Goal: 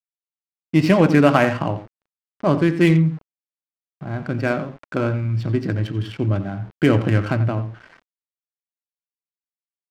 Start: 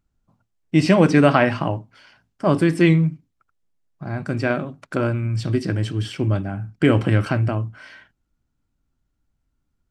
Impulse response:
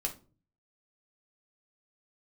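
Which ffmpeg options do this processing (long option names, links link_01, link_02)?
-filter_complex "[0:a]asplit=2[link_01][link_02];[link_02]adelay=87.46,volume=-12dB,highshelf=frequency=4000:gain=-1.97[link_03];[link_01][link_03]amix=inputs=2:normalize=0,aeval=exprs='val(0)*gte(abs(val(0)),0.0112)':channel_layout=same,adynamicsmooth=sensitivity=3.5:basefreq=2000"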